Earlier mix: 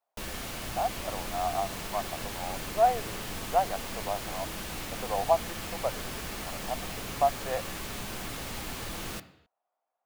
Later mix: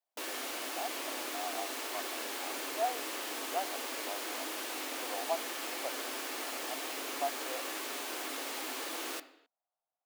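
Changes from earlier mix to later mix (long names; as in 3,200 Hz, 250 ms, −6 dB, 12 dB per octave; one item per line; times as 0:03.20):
speech −10.5 dB
master: add linear-phase brick-wall high-pass 250 Hz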